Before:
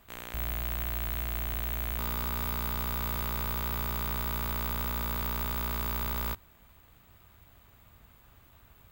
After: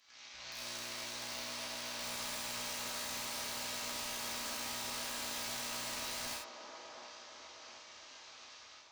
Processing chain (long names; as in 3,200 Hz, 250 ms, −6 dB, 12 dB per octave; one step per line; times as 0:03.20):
variable-slope delta modulation 32 kbit/s
first difference
brickwall limiter −44 dBFS, peak gain reduction 6 dB
automatic gain control gain up to 10 dB
wrap-around overflow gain 37 dB
delay with a band-pass on its return 711 ms, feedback 53%, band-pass 600 Hz, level −3 dB
reverb whose tail is shaped and stops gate 120 ms flat, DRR −5.5 dB
level +1 dB